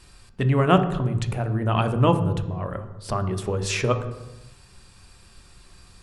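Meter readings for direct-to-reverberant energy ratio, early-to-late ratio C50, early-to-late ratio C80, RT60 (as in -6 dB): 8.0 dB, 11.0 dB, 13.0 dB, 1.0 s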